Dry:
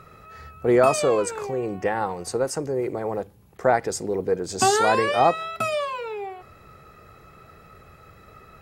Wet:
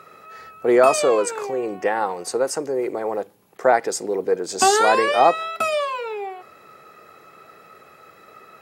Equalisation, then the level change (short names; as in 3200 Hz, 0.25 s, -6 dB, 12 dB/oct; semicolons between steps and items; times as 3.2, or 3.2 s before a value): HPF 300 Hz 12 dB/oct; +3.5 dB